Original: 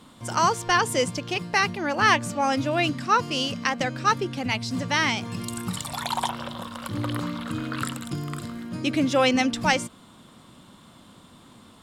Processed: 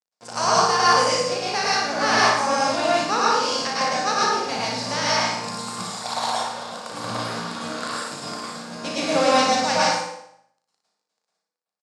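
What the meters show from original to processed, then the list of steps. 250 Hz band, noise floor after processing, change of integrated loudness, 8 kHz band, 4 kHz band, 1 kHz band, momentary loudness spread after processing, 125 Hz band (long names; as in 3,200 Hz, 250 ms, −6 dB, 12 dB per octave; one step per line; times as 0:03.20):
−3.0 dB, −85 dBFS, +3.5 dB, +6.0 dB, +5.0 dB, +5.0 dB, 13 LU, −6.0 dB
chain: compressing power law on the bin magnitudes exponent 0.7
in parallel at −1 dB: downward compressor, threshold −37 dBFS, peak gain reduction 21 dB
on the sum: dead-zone distortion −34 dBFS
loudspeaker in its box 210–8,300 Hz, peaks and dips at 330 Hz −5 dB, 490 Hz +7 dB, 780 Hz +6 dB, 2,100 Hz −4 dB, 3,100 Hz −6 dB, 4,800 Hz +6 dB
double-tracking delay 35 ms −6 dB
on a send: flutter between parallel walls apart 10.1 metres, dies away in 0.61 s
on the sum: dense smooth reverb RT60 0.64 s, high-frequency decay 0.75×, pre-delay 95 ms, DRR −6 dB
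level −6 dB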